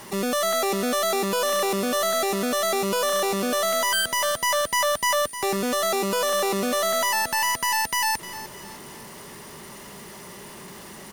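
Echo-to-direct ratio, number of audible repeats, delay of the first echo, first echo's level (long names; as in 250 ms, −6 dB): −13.5 dB, 3, 305 ms, −14.5 dB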